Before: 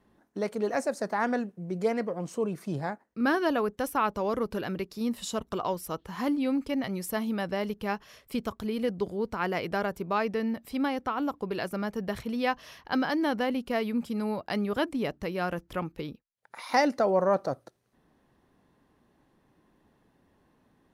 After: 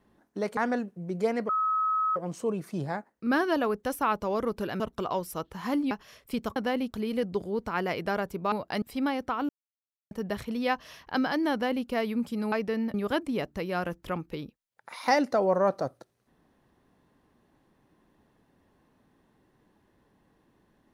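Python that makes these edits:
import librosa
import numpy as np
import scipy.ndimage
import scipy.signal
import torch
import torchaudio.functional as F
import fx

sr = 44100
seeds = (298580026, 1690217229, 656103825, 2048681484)

y = fx.edit(x, sr, fx.cut(start_s=0.57, length_s=0.61),
    fx.insert_tone(at_s=2.1, length_s=0.67, hz=1280.0, db=-23.5),
    fx.cut(start_s=4.74, length_s=0.6),
    fx.cut(start_s=6.45, length_s=1.47),
    fx.swap(start_s=10.18, length_s=0.42, other_s=14.3, other_length_s=0.3),
    fx.silence(start_s=11.27, length_s=0.62),
    fx.duplicate(start_s=13.3, length_s=0.35, to_s=8.57), tone=tone)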